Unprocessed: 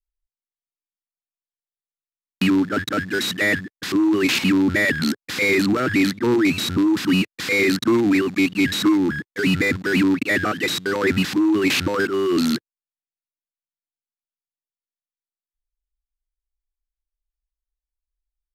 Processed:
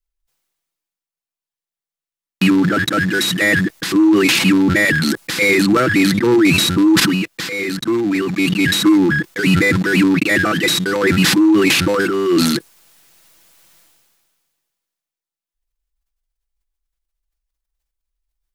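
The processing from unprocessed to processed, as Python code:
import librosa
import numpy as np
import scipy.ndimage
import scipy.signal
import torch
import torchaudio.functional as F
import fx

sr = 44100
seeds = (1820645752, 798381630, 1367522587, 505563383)

y = fx.edit(x, sr, fx.fade_in_from(start_s=7.0, length_s=2.15, floor_db=-18.0), tone=tone)
y = y + 0.42 * np.pad(y, (int(6.0 * sr / 1000.0), 0))[:len(y)]
y = fx.dynamic_eq(y, sr, hz=9900.0, q=1.7, threshold_db=-46.0, ratio=4.0, max_db=6)
y = fx.sustainer(y, sr, db_per_s=28.0)
y = y * 10.0 ** (3.5 / 20.0)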